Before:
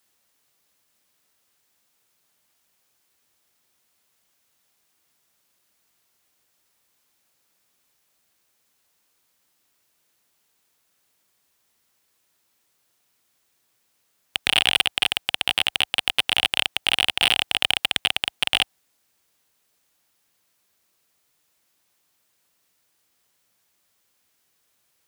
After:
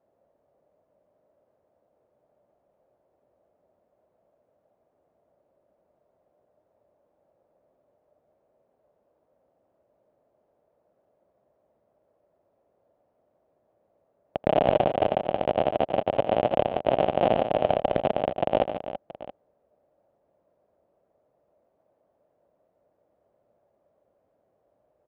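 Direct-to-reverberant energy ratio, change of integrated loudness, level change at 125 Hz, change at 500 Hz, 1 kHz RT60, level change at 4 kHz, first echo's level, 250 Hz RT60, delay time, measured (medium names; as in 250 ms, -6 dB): no reverb, -4.0 dB, +10.0 dB, +17.5 dB, no reverb, -22.5 dB, -17.5 dB, no reverb, 83 ms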